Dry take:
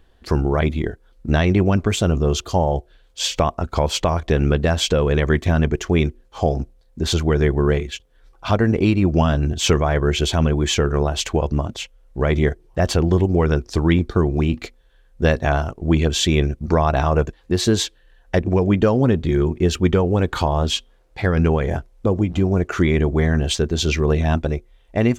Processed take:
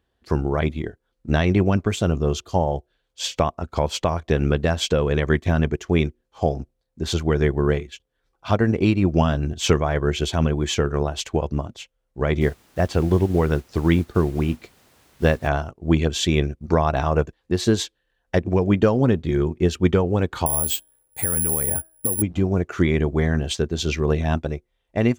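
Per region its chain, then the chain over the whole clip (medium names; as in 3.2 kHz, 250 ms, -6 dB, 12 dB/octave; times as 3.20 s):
12.40–15.47 s: treble shelf 4.9 kHz -7 dB + added noise pink -43 dBFS
20.46–22.22 s: de-hum 325.2 Hz, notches 5 + compression, threshold -21 dBFS + careless resampling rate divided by 4×, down filtered, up zero stuff
whole clip: high-pass 61 Hz; upward expansion 1.5:1, over -37 dBFS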